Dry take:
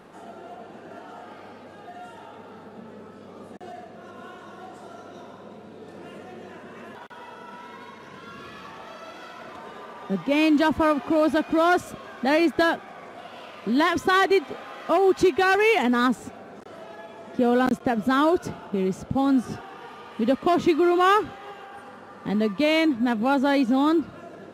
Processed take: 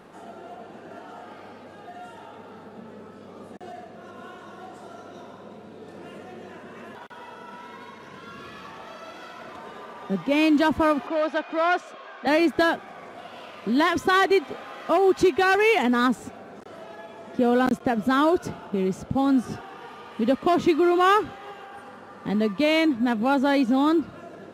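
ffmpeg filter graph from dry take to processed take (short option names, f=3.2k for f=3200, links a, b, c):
-filter_complex "[0:a]asettb=1/sr,asplit=3[a][b][c];[a]atrim=end=11.074[d];[b]atrim=start=11.07:end=12.27,asetpts=PTS-STARTPTS,afade=t=in:d=0.004:c=qsin,afade=t=out:st=1.196:d=0.004:c=qsin,asoftclip=type=hard:threshold=-14.5dB,highpass=510,lowpass=4.4k[e];[c]atrim=start=12.266[f];[d][e]acrossfade=d=0.004:c1=hsin:c2=qsin[g];[g][f]acrossfade=d=0.004:c1=qsin:c2=hsin"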